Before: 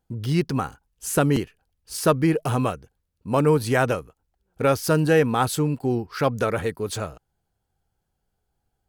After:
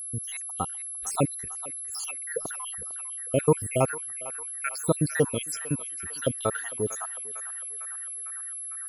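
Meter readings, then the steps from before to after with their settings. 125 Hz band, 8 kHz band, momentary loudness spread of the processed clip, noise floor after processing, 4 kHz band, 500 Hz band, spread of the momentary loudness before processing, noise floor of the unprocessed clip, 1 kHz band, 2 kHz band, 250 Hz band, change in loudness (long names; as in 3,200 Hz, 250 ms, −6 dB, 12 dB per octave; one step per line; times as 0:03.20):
−8.0 dB, +5.5 dB, 9 LU, −37 dBFS, −7.0 dB, −6.5 dB, 14 LU, −77 dBFS, −8.0 dB, −7.0 dB, −9.0 dB, −6.5 dB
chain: time-frequency cells dropped at random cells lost 79%
feedback echo with a band-pass in the loop 452 ms, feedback 83%, band-pass 1,700 Hz, level −12.5 dB
steady tone 11,000 Hz −34 dBFS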